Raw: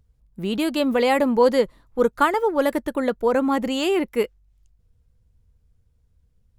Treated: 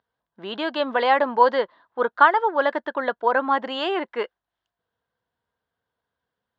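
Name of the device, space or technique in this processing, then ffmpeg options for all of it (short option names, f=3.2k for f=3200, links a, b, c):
phone earpiece: -filter_complex "[0:a]asettb=1/sr,asplit=3[a][b][c];[a]atrim=end=1.544[d];[b]atrim=start=1.54:end=2.14,asetpts=PTS-STARTPTS,afade=t=in:d=0.004:c=qsin,afade=t=out:st=0.596:d=0.004:c=qsin,lowpass=5.7k[e];[c]atrim=start=2.136[f];[d][e]acrossfade=d=0.004:c1=hsin:c2=qsin[g];[g][f]acrossfade=d=0.004:c1=qsin:c2=hsin,highpass=460,equalizer=f=470:t=q:w=4:g=-3,equalizer=f=690:t=q:w=4:g=5,equalizer=f=1k:t=q:w=4:g=7,equalizer=f=1.6k:t=q:w=4:g=9,equalizer=f=2.4k:t=q:w=4:g=-7,equalizer=f=3.3k:t=q:w=4:g=3,lowpass=f=4k:w=0.5412,lowpass=f=4k:w=1.3066"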